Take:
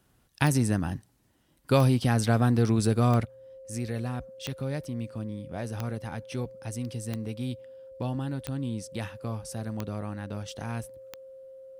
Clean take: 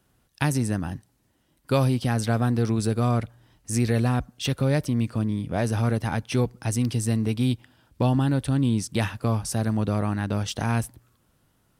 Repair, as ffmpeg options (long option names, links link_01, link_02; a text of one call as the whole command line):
ffmpeg -i in.wav -af "adeclick=threshold=4,bandreject=frequency=530:width=30,asetnsamples=nb_out_samples=441:pad=0,asendcmd='3.25 volume volume 10dB',volume=0dB" out.wav